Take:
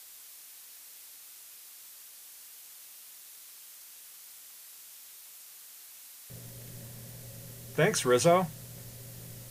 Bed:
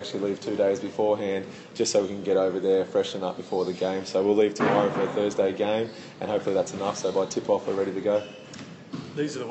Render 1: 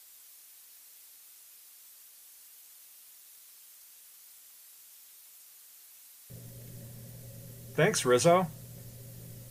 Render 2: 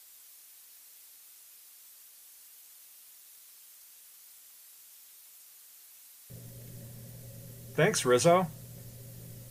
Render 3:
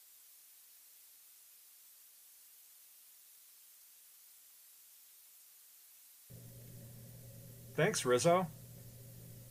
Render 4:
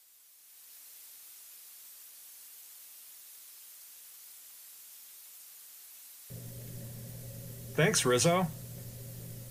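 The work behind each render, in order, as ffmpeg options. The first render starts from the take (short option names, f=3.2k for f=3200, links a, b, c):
-af "afftdn=nr=6:nf=-51"
-af anull
-af "volume=-6.5dB"
-filter_complex "[0:a]acrossover=split=180|2000[a][b][c];[b]alimiter=level_in=6dB:limit=-24dB:level=0:latency=1:release=110,volume=-6dB[d];[a][d][c]amix=inputs=3:normalize=0,dynaudnorm=f=380:g=3:m=9dB"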